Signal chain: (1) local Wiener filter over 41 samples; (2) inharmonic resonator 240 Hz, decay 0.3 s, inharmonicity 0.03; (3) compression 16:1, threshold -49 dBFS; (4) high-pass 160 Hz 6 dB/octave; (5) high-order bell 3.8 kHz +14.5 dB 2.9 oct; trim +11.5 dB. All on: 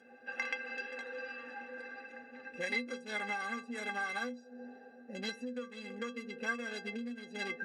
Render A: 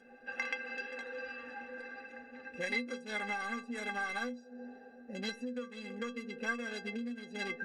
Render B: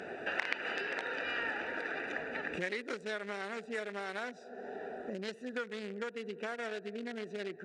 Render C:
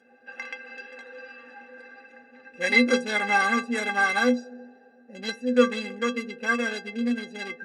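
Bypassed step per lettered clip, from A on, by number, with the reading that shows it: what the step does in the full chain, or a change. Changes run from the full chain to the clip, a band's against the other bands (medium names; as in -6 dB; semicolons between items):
4, 250 Hz band +1.5 dB; 2, 8 kHz band -4.5 dB; 3, mean gain reduction 8.5 dB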